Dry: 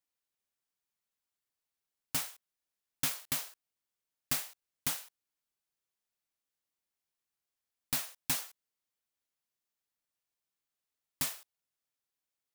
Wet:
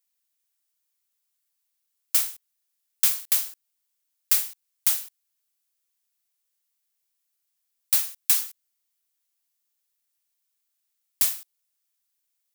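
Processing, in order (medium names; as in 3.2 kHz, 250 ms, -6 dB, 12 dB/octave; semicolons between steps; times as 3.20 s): tilt EQ +3.5 dB/octave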